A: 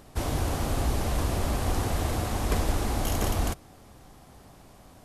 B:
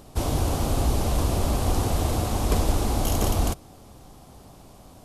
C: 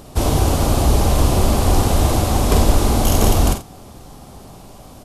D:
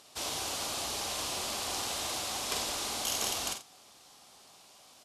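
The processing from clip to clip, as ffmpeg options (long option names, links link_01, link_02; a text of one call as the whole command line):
ffmpeg -i in.wav -af "equalizer=frequency=1800:width=1.7:gain=-7.5,volume=4dB" out.wav
ffmpeg -i in.wav -af "aecho=1:1:44|49|84:0.335|0.316|0.211,volume=7.5dB" out.wav
ffmpeg -i in.wav -af "bandpass=frequency=4400:width_type=q:width=0.68:csg=0,volume=-5.5dB" out.wav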